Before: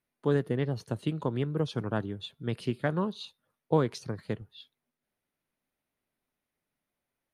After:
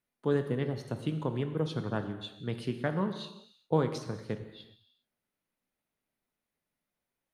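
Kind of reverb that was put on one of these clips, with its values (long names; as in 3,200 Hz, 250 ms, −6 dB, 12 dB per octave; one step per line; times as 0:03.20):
reverb whose tail is shaped and stops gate 430 ms falling, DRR 7.5 dB
level −2.5 dB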